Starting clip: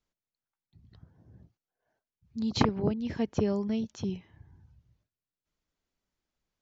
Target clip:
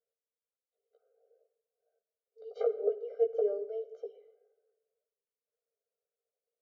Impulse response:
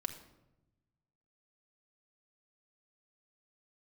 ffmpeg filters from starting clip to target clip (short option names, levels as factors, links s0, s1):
-filter_complex "[0:a]bandpass=f=460:t=q:w=4.7:csg=0,asplit=2[s0][s1];[1:a]atrim=start_sample=2205,asetrate=41013,aresample=44100,adelay=15[s2];[s1][s2]afir=irnorm=-1:irlink=0,volume=0.631[s3];[s0][s3]amix=inputs=2:normalize=0,afftfilt=real='re*eq(mod(floor(b*sr/1024/400),2),1)':imag='im*eq(mod(floor(b*sr/1024/400),2),1)':win_size=1024:overlap=0.75,volume=2.11"